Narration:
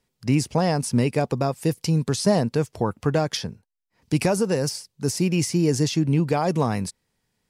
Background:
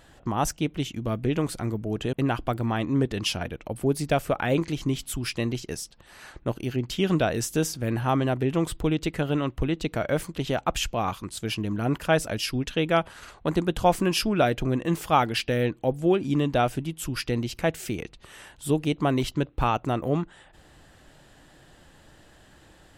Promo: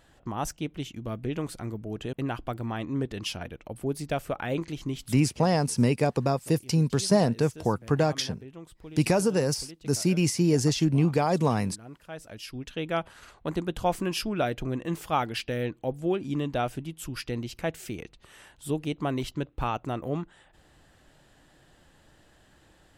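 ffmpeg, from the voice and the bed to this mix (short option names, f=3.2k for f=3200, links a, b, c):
-filter_complex "[0:a]adelay=4850,volume=-2dB[a];[1:a]volume=8.5dB,afade=t=out:st=5.02:d=0.27:silence=0.199526,afade=t=in:st=12.11:d=0.95:silence=0.188365[b];[a][b]amix=inputs=2:normalize=0"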